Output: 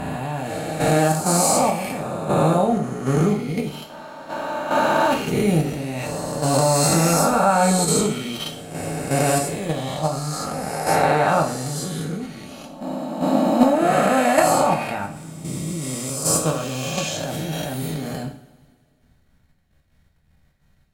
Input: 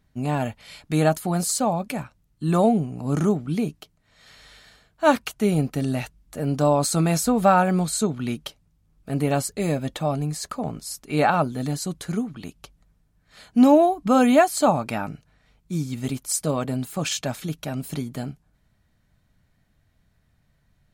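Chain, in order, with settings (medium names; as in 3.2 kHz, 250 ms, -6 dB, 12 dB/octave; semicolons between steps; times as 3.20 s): reverse spectral sustain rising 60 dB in 2.44 s; level held to a coarse grid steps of 10 dB; two-slope reverb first 0.46 s, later 2.2 s, from -21 dB, DRR 0.5 dB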